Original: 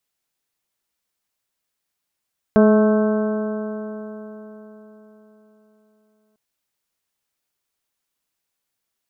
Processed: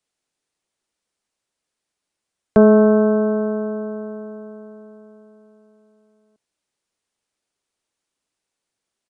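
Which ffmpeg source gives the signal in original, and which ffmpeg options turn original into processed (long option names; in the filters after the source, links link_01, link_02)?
-f lavfi -i "aevalsrc='0.282*pow(10,-3*t/4.13)*sin(2*PI*213.16*t)+0.2*pow(10,-3*t/4.13)*sin(2*PI*427.28*t)+0.158*pow(10,-3*t/4.13)*sin(2*PI*643.3*t)+0.0316*pow(10,-3*t/4.13)*sin(2*PI*862.16*t)+0.0447*pow(10,-3*t/4.13)*sin(2*PI*1084.78*t)+0.0299*pow(10,-3*t/4.13)*sin(2*PI*1312.05*t)+0.0355*pow(10,-3*t/4.13)*sin(2*PI*1544.82*t)':duration=3.8:sample_rate=44100"
-filter_complex "[0:a]acrossover=split=250|580[link_01][link_02][link_03];[link_02]acontrast=54[link_04];[link_01][link_04][link_03]amix=inputs=3:normalize=0,aresample=22050,aresample=44100"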